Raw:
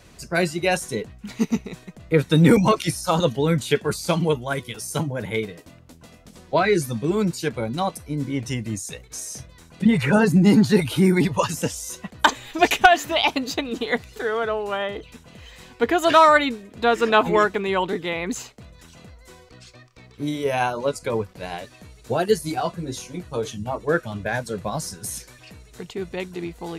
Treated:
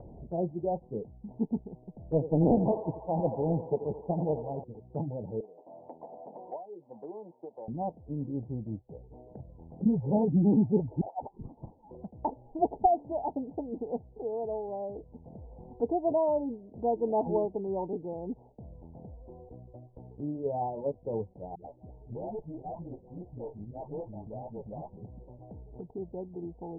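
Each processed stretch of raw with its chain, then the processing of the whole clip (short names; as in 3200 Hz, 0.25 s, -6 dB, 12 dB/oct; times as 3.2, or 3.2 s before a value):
2.03–4.64 narrowing echo 85 ms, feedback 82%, band-pass 960 Hz, level -7.5 dB + Doppler distortion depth 0.74 ms
5.4–7.68 HPF 880 Hz + three-band squash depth 100%
11.01–11.91 resonant high-pass 1200 Hz, resonance Q 7.6 + inverted band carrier 2900 Hz
21.55–24.97 dispersion highs, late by 0.139 s, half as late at 580 Hz + tube stage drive 25 dB, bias 0.7
whole clip: steep low-pass 890 Hz 96 dB/oct; upward compressor, threshold -29 dBFS; gain -8.5 dB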